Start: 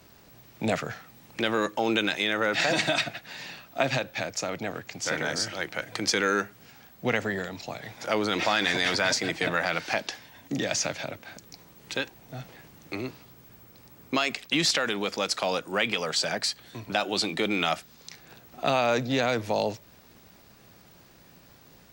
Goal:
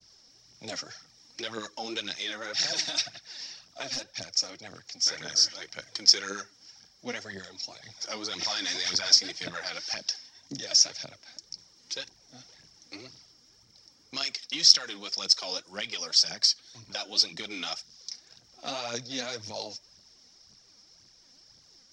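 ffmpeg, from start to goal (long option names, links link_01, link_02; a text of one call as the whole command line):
ffmpeg -i in.wav -filter_complex "[0:a]asettb=1/sr,asplit=3[link_01][link_02][link_03];[link_01]atrim=end=3.874[link_04];[link_02]atrim=start=3.87:end=4.54,asetpts=PTS-STARTPTS,afade=type=in:duration=0.004:curve=qsin,afade=type=out:start_time=0.666:duration=0.004:curve=qsin,aeval=exprs='0.0794*(abs(mod(val(0)/0.0794+3,4)-2)-1)':channel_layout=same[link_05];[link_03]atrim=start=4.536[link_06];[link_04][link_05]acrossfade=duration=0.004:curve1=hsin:curve2=qsin[link_07];[link_07][link_06]acrossfade=duration=0.004:curve1=qsin:curve2=hsin,highshelf=frequency=3600:gain=9.5,aphaser=in_gain=1:out_gain=1:delay=4.3:decay=0.6:speed=1.9:type=triangular,agate=range=-33dB:threshold=-47dB:ratio=3:detection=peak,lowpass=frequency=5400:width_type=q:width=12,bandreject=frequency=2600:width=16,volume=-15dB" out.wav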